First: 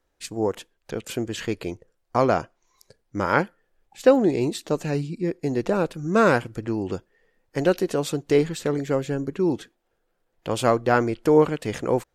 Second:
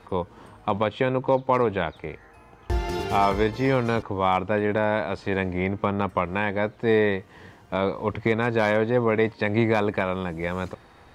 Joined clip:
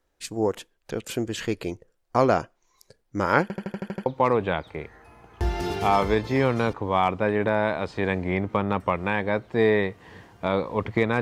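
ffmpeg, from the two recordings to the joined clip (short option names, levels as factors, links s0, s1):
-filter_complex "[0:a]apad=whole_dur=11.21,atrim=end=11.21,asplit=8[s0][s1][s2][s3][s4][s5][s6][s7];[s0]atrim=end=3.502[s8];[s1]atrim=start=3.418:end=3.502[s9];[s2]atrim=start=3.418:end=3.502[s10];[s3]atrim=start=3.418:end=3.502[s11];[s4]atrim=start=3.418:end=3.502[s12];[s5]atrim=start=3.418:end=3.502[s13];[s6]atrim=start=3.418:end=3.502[s14];[s7]atrim=start=3.418:end=3.502[s15];[1:a]atrim=start=1.348:end=8.5[s16];[s8][s9]acrossfade=d=0.004:c1=hsin:c2=hsin[s17];[s17][s10]acrossfade=d=0.004:c1=hsin:c2=hsin[s18];[s18][s11]acrossfade=d=0.004:c1=hsin:c2=hsin[s19];[s19][s12]acrossfade=d=0.004:c1=hsin:c2=hsin[s20];[s20][s13]acrossfade=d=0.004:c1=hsin:c2=hsin[s21];[s21][s14]acrossfade=d=0.004:c1=hsin:c2=hsin[s22];[s22][s15]acrossfade=d=0.004:c1=hsin:c2=hsin[s23];[s23][s16]acrossfade=d=0.004:c1=hsin:c2=hsin"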